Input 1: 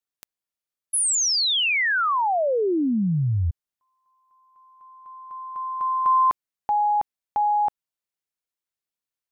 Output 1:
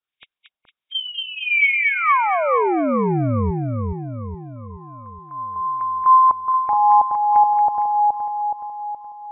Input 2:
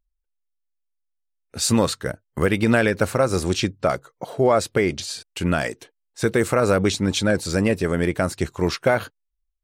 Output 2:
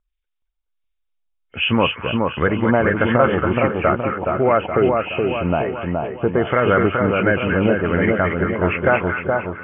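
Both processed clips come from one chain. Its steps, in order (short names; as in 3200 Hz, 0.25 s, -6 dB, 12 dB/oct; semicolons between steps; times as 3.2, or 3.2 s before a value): nonlinear frequency compression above 2100 Hz 4:1; LFO low-pass sine 1.4 Hz 860–2000 Hz; split-band echo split 1300 Hz, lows 0.421 s, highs 0.229 s, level -3 dB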